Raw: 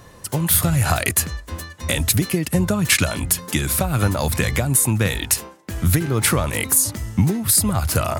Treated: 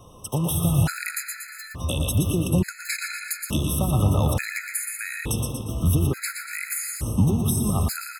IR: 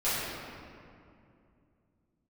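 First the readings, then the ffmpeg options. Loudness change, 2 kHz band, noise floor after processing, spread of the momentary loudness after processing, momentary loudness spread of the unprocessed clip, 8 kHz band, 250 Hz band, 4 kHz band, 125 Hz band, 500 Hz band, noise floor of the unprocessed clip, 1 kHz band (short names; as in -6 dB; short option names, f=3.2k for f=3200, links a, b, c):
-5.5 dB, -6.0 dB, -42 dBFS, 9 LU, 8 LU, -10.0 dB, -3.0 dB, -9.0 dB, -2.5 dB, -6.0 dB, -45 dBFS, -7.0 dB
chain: -filter_complex "[0:a]asplit=2[a][b];[b]aecho=0:1:117|234|351|468:0.447|0.165|0.0612|0.0226[c];[a][c]amix=inputs=2:normalize=0,acrossover=split=270[d][e];[e]acompressor=threshold=-21dB:ratio=6[f];[d][f]amix=inputs=2:normalize=0,aecho=1:1:381:0.112,asplit=2[g][h];[1:a]atrim=start_sample=2205,highshelf=f=4.6k:g=-11.5,adelay=96[i];[h][i]afir=irnorm=-1:irlink=0,volume=-15dB[j];[g][j]amix=inputs=2:normalize=0,afftfilt=real='re*gt(sin(2*PI*0.57*pts/sr)*(1-2*mod(floor(b*sr/1024/1300),2)),0)':imag='im*gt(sin(2*PI*0.57*pts/sr)*(1-2*mod(floor(b*sr/1024/1300),2)),0)':win_size=1024:overlap=0.75,volume=-2.5dB"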